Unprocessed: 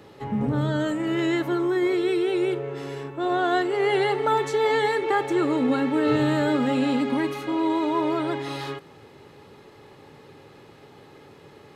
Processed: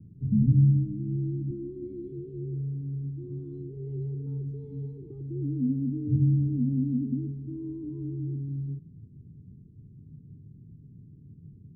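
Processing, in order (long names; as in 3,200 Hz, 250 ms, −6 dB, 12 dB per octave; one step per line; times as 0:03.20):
0:01.50–0:02.12: comb filter 3.6 ms, depth 77%
inverse Chebyshev low-pass filter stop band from 640 Hz, stop band 60 dB
level +8 dB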